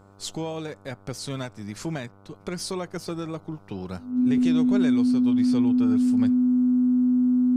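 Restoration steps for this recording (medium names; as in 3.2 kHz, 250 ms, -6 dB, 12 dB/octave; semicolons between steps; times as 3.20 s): de-hum 98.8 Hz, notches 15; band-stop 250 Hz, Q 30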